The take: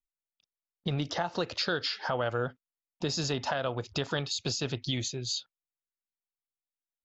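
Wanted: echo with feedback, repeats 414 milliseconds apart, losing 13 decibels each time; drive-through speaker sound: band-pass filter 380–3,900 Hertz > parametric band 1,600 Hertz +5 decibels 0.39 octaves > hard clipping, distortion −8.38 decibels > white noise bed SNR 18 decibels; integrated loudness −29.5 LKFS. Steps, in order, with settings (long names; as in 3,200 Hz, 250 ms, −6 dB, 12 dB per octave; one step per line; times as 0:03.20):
band-pass filter 380–3,900 Hz
parametric band 1,600 Hz +5 dB 0.39 octaves
repeating echo 414 ms, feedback 22%, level −13 dB
hard clipping −30 dBFS
white noise bed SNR 18 dB
level +7 dB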